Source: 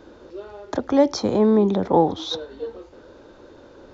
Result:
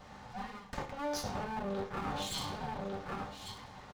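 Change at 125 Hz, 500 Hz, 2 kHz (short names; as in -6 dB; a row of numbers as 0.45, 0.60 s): -12.0, -20.0, -2.5 dB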